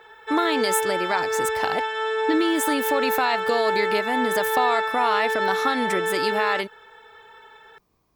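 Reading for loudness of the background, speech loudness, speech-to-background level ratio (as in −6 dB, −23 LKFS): −24.5 LKFS, −25.5 LKFS, −1.0 dB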